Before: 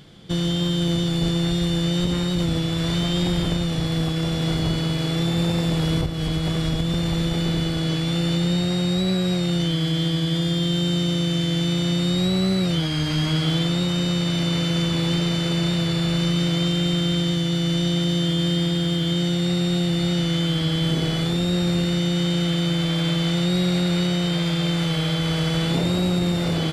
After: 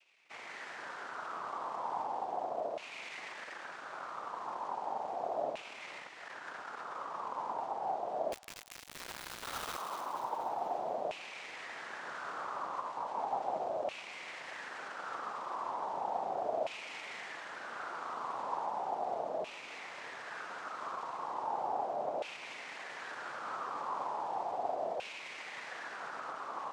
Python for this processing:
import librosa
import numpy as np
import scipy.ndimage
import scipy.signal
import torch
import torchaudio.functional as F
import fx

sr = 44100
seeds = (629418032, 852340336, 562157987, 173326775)

y = np.maximum(x, 0.0)
y = fx.noise_vocoder(y, sr, seeds[0], bands=2)
y = fx.filter_lfo_bandpass(y, sr, shape='saw_down', hz=0.36, low_hz=610.0, high_hz=2600.0, q=4.9)
y = fx.quant_dither(y, sr, seeds[1], bits=6, dither='none', at=(8.32, 9.78))
y = fx.echo_wet_highpass(y, sr, ms=239, feedback_pct=49, hz=2400.0, wet_db=-6.5)
y = F.gain(torch.from_numpy(y), -2.5).numpy()